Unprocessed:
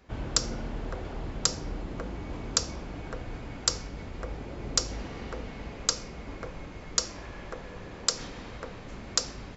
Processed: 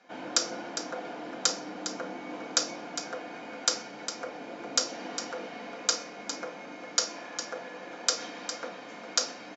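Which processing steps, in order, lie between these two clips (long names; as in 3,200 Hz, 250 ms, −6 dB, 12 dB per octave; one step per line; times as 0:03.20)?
elliptic band-pass filter 270–6,500 Hz, stop band 80 dB
single-tap delay 406 ms −10 dB
convolution reverb RT60 0.30 s, pre-delay 4 ms, DRR 2 dB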